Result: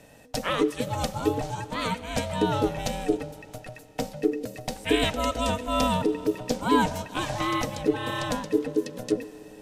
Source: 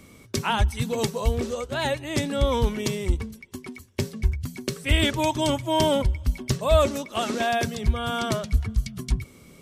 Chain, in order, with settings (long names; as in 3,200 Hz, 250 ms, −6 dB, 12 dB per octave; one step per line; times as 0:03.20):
four-comb reverb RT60 3.9 s, combs from 32 ms, DRR 16 dB
ring modulation 370 Hz